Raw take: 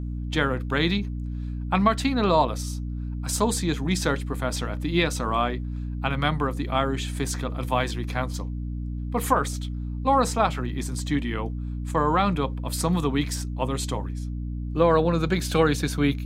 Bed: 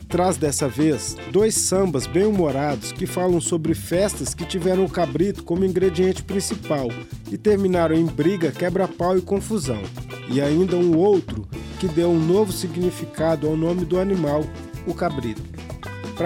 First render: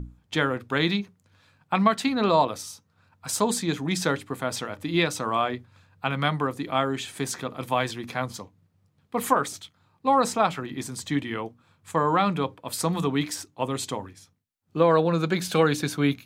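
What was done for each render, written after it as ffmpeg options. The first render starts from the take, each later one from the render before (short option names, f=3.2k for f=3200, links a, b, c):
-af "bandreject=f=60:t=h:w=6,bandreject=f=120:t=h:w=6,bandreject=f=180:t=h:w=6,bandreject=f=240:t=h:w=6,bandreject=f=300:t=h:w=6"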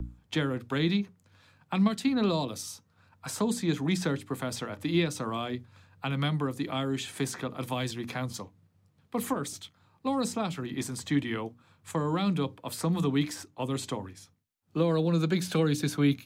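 -filter_complex "[0:a]acrossover=split=380|3000[a][b][c];[b]acompressor=threshold=-35dB:ratio=6[d];[a][d][c]amix=inputs=3:normalize=0,acrossover=split=140|1500|2400[e][f][g][h];[h]alimiter=level_in=4dB:limit=-24dB:level=0:latency=1:release=338,volume=-4dB[i];[e][f][g][i]amix=inputs=4:normalize=0"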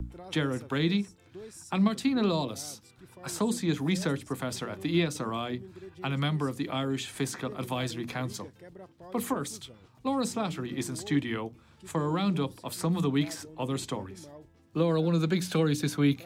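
-filter_complex "[1:a]volume=-27.5dB[a];[0:a][a]amix=inputs=2:normalize=0"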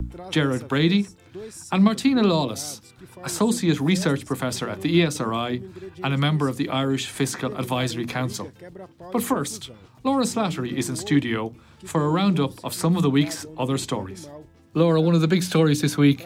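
-af "volume=7.5dB"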